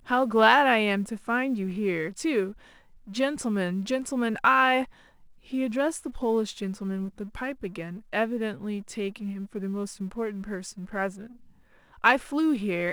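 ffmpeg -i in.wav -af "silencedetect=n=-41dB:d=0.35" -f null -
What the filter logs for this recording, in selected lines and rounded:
silence_start: 2.52
silence_end: 3.07 | silence_duration: 0.55
silence_start: 4.85
silence_end: 5.50 | silence_duration: 0.65
silence_start: 11.31
silence_end: 12.04 | silence_duration: 0.72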